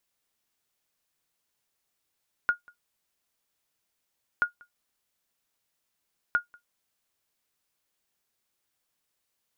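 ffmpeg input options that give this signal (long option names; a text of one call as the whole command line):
ffmpeg -f lavfi -i "aevalsrc='0.188*(sin(2*PI*1430*mod(t,1.93))*exp(-6.91*mod(t,1.93)/0.12)+0.0398*sin(2*PI*1430*max(mod(t,1.93)-0.19,0))*exp(-6.91*max(mod(t,1.93)-0.19,0)/0.12))':duration=5.79:sample_rate=44100" out.wav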